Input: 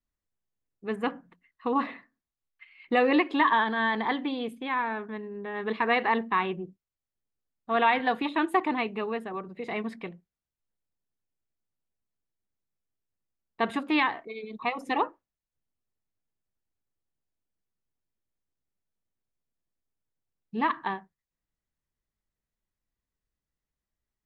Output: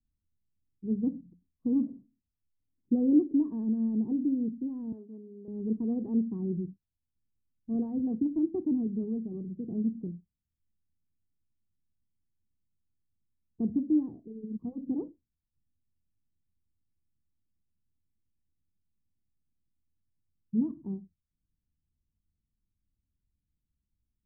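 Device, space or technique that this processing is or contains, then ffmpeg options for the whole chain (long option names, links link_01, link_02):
the neighbour's flat through the wall: -filter_complex "[0:a]asettb=1/sr,asplit=3[link_01][link_02][link_03];[link_01]atrim=end=4.924[link_04];[link_02]atrim=start=4.92:end=5.48,asetpts=PTS-STARTPTS,afade=type=in:duration=0.004:curve=qsin,afade=type=out:start_time=0.556:duration=0.004:curve=qsin,highpass=440[link_05];[link_03]atrim=start=5.476[link_06];[link_04][link_05]acrossfade=duration=0.004:curve1=hsin:curve2=qsin[link_07];[link_07][link_06]acrossfade=duration=0.004:curve1=qsin:curve2=hsin,lowpass=frequency=280:width=0.5412,lowpass=frequency=280:width=1.3066,equalizer=frequency=83:width_type=o:width=0.44:gain=7,volume=6.5dB"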